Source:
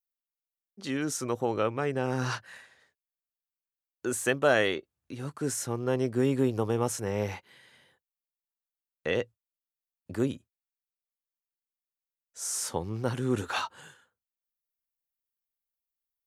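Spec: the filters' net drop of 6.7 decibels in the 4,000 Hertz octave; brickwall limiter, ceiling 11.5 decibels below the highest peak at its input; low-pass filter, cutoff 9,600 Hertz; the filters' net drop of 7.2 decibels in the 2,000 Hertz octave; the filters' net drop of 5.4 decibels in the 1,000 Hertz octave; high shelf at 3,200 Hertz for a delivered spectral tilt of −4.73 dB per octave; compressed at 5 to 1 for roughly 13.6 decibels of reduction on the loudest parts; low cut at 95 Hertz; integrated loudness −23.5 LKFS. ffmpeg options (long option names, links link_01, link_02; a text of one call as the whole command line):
ffmpeg -i in.wav -af "highpass=95,lowpass=9600,equalizer=frequency=1000:width_type=o:gain=-5.5,equalizer=frequency=2000:width_type=o:gain=-5.5,highshelf=frequency=3200:gain=-3.5,equalizer=frequency=4000:width_type=o:gain=-4,acompressor=threshold=-37dB:ratio=5,volume=23.5dB,alimiter=limit=-13dB:level=0:latency=1" out.wav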